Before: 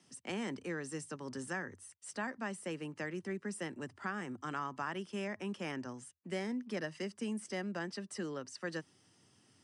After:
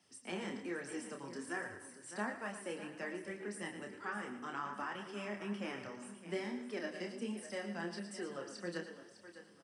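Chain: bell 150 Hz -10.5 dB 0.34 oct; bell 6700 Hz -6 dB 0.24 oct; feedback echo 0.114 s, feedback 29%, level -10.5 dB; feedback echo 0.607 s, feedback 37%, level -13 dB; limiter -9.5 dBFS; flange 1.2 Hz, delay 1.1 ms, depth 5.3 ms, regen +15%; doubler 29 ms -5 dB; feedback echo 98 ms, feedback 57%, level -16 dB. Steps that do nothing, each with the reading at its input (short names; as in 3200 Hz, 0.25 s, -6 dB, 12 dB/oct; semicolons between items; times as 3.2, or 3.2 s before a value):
limiter -9.5 dBFS: input peak -24.0 dBFS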